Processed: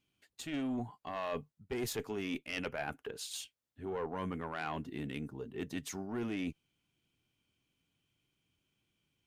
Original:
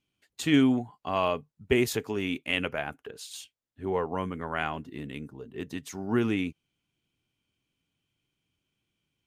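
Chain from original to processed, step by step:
one-sided soft clipper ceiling −22.5 dBFS
reversed playback
downward compressor 16 to 1, threshold −34 dBFS, peak gain reduction 15 dB
reversed playback

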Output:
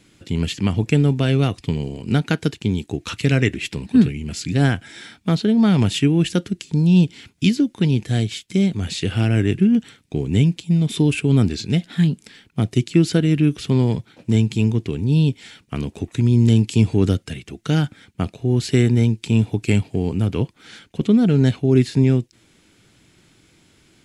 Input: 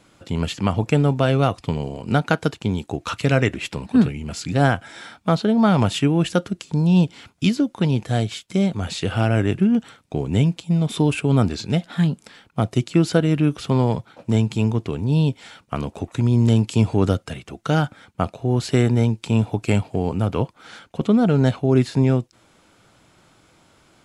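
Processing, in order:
flat-topped bell 850 Hz −10 dB
level +2 dB

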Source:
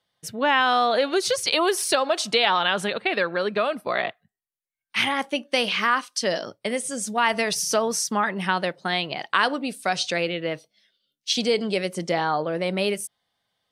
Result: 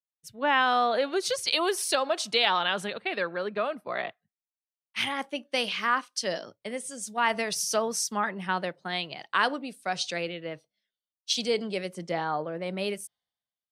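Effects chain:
multiband upward and downward expander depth 70%
level −5.5 dB

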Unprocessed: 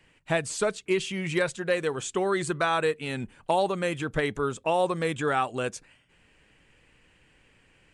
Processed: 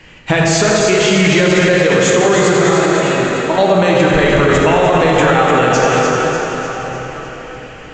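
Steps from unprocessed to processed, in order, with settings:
downward compressor, threshold −27 dBFS, peak gain reduction 7.5 dB
0:02.53–0:03.58: tuned comb filter 320 Hz, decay 0.15 s, harmonics all, mix 80%
on a send: echo with a time of its own for lows and highs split 1,100 Hz, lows 93 ms, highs 299 ms, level −7 dB
on the sum: dense smooth reverb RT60 4.8 s, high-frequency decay 0.6×, DRR −3 dB
boost into a limiter +20.5 dB
level −1.5 dB
Ogg Vorbis 64 kbit/s 16,000 Hz

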